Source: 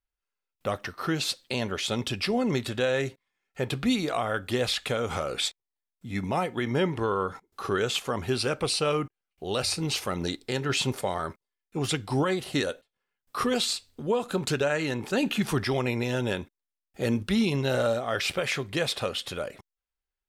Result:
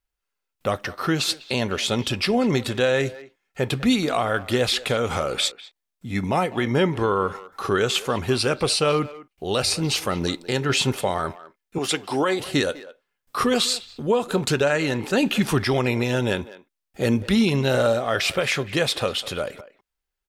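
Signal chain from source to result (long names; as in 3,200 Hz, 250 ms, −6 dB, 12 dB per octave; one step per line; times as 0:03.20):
0:11.78–0:12.40: high-pass filter 290 Hz 12 dB per octave
far-end echo of a speakerphone 200 ms, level −16 dB
level +5.5 dB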